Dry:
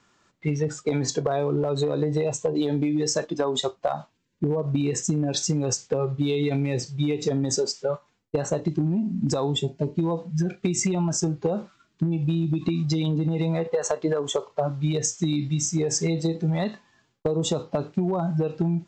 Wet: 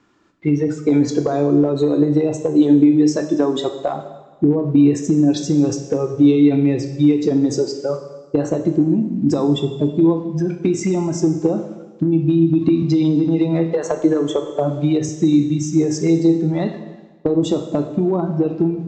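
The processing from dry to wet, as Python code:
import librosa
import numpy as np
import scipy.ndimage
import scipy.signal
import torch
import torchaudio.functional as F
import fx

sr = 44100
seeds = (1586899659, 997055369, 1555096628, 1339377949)

y = fx.lowpass(x, sr, hz=3100.0, slope=6)
y = fx.peak_eq(y, sr, hz=310.0, db=11.0, octaves=0.63)
y = fx.rev_plate(y, sr, seeds[0], rt60_s=1.3, hf_ratio=0.95, predelay_ms=0, drr_db=6.5)
y = fx.band_squash(y, sr, depth_pct=40, at=(12.82, 15.09))
y = y * 10.0 ** (2.0 / 20.0)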